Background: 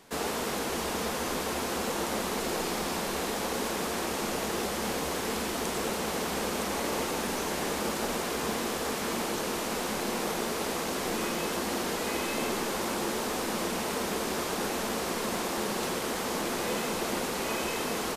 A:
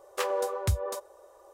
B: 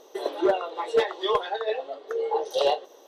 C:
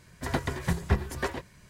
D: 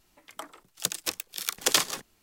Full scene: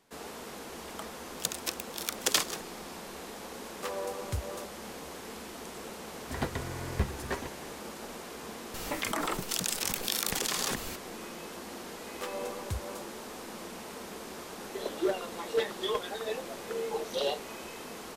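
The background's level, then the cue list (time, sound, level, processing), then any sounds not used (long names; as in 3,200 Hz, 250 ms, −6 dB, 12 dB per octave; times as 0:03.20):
background −11.5 dB
0:00.60: mix in D −4 dB
0:03.65: mix in A −7.5 dB
0:06.08: mix in C −4.5 dB + buffer that repeats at 0:00.52, samples 1,024, times 16
0:08.74: mix in D −13.5 dB + envelope flattener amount 100%
0:12.03: mix in A −9 dB
0:14.60: mix in B −3.5 dB + parametric band 830 Hz −9 dB 1.4 octaves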